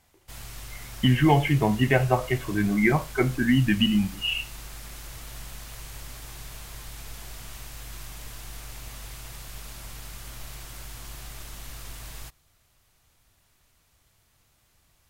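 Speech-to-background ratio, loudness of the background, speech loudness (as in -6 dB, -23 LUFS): 18.0 dB, -41.0 LUFS, -23.0 LUFS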